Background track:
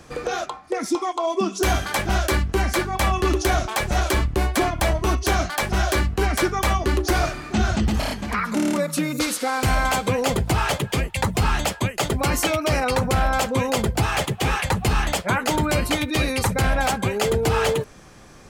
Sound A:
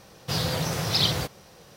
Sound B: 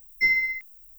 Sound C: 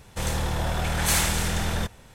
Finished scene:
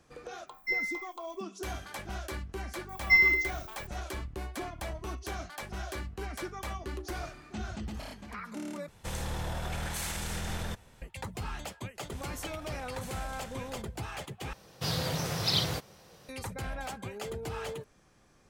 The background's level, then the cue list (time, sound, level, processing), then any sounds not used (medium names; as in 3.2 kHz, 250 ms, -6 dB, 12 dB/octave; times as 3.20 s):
background track -17.5 dB
0.46 s: add B -10 dB, fades 0.10 s
2.89 s: add B
8.88 s: replace with C -7.5 dB + peak limiter -18.5 dBFS
11.95 s: add C -17.5 dB + compression, threshold -25 dBFS
14.53 s: replace with A -5 dB